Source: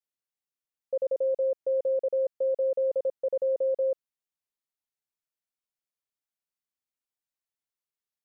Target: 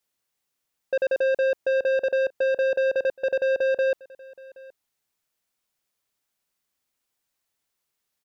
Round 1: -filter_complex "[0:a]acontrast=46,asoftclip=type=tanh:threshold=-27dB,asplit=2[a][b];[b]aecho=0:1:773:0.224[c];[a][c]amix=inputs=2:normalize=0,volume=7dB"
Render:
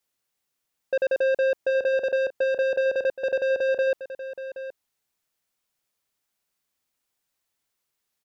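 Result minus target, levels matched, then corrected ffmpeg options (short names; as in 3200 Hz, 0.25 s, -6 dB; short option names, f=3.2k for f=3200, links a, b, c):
echo-to-direct +9.5 dB
-filter_complex "[0:a]acontrast=46,asoftclip=type=tanh:threshold=-27dB,asplit=2[a][b];[b]aecho=0:1:773:0.075[c];[a][c]amix=inputs=2:normalize=0,volume=7dB"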